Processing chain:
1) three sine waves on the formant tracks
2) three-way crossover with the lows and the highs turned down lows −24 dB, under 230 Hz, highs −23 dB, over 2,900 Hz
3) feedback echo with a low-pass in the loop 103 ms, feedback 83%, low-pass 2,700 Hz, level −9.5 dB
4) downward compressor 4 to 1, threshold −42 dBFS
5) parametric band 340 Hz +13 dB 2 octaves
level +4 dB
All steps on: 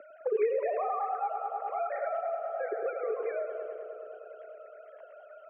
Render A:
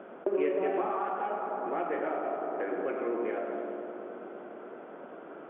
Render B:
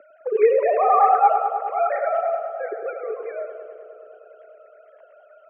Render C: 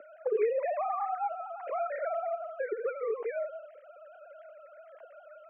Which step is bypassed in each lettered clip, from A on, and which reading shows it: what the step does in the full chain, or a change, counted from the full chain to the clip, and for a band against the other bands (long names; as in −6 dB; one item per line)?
1, change in momentary loudness spread −4 LU
4, average gain reduction 7.0 dB
3, change in momentary loudness spread +3 LU